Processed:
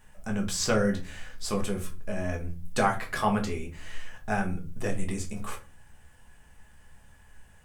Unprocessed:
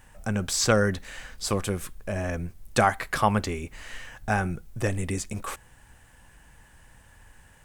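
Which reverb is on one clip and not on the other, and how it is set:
rectangular room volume 170 cubic metres, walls furnished, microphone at 1.4 metres
level −6.5 dB

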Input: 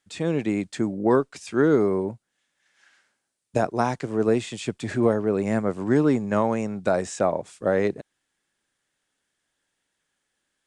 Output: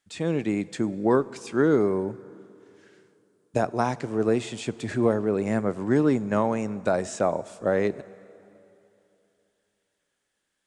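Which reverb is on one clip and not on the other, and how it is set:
dense smooth reverb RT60 3 s, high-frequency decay 0.8×, DRR 18 dB
level −1.5 dB

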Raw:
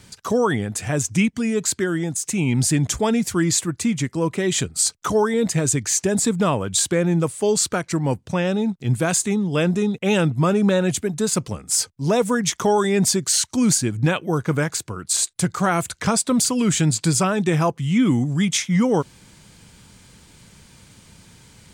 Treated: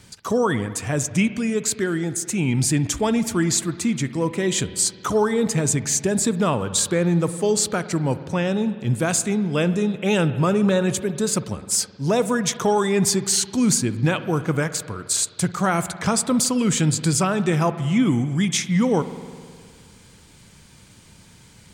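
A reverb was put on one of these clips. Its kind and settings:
spring reverb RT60 2 s, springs 52 ms, chirp 20 ms, DRR 12.5 dB
level −1 dB

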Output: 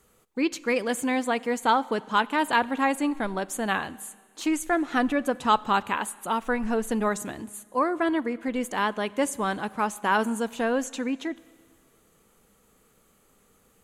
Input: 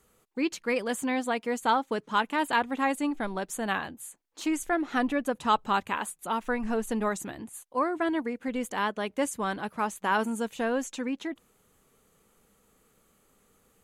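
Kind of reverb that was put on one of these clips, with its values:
four-comb reverb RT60 1.8 s, combs from 30 ms, DRR 20 dB
level +3 dB

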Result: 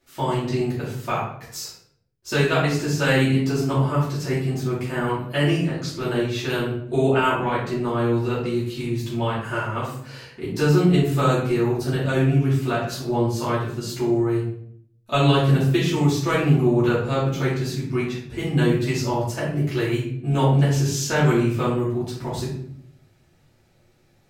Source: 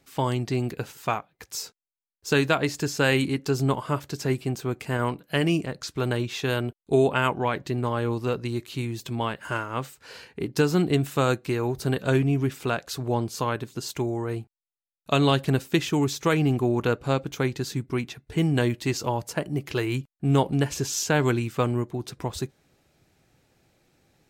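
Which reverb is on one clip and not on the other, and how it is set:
rectangular room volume 110 cubic metres, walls mixed, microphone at 2.7 metres
level −8 dB

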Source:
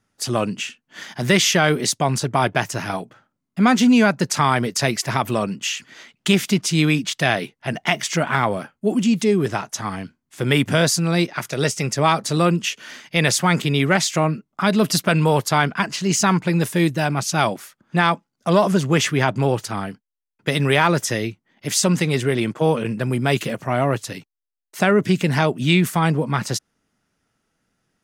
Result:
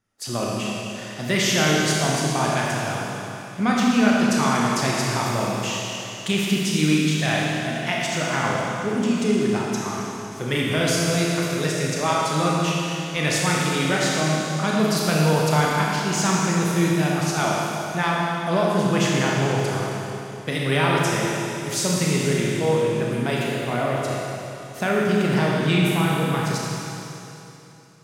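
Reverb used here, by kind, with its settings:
four-comb reverb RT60 3.1 s, combs from 26 ms, DRR −4 dB
level −7.5 dB

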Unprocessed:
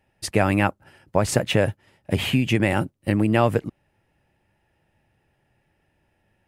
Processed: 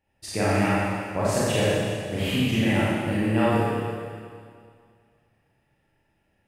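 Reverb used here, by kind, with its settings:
four-comb reverb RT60 2.1 s, combs from 28 ms, DRR −9 dB
level −10.5 dB

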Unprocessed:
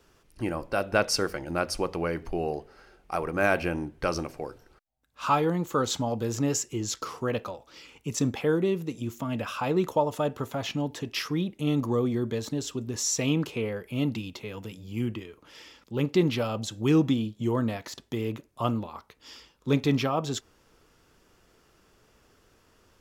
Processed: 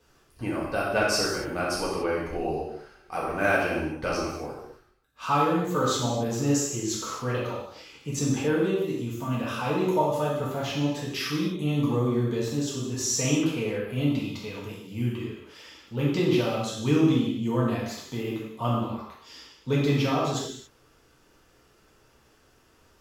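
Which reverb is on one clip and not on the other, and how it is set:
reverb whose tail is shaped and stops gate 310 ms falling, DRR −6 dB
level −5 dB

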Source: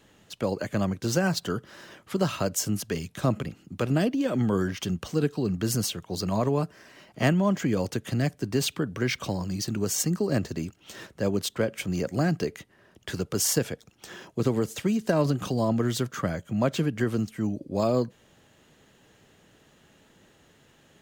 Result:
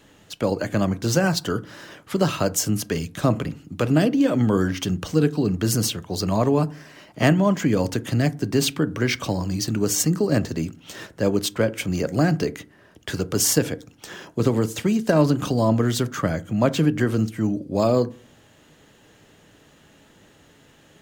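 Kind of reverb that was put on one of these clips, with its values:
feedback delay network reverb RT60 0.4 s, low-frequency decay 1.45×, high-frequency decay 0.4×, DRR 13.5 dB
level +5 dB

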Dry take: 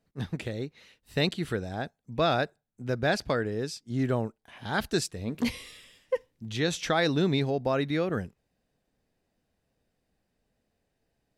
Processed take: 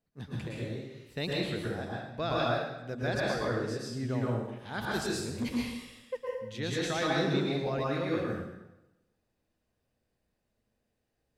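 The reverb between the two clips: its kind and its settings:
dense smooth reverb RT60 0.97 s, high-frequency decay 0.85×, pre-delay 100 ms, DRR −5 dB
level −9 dB

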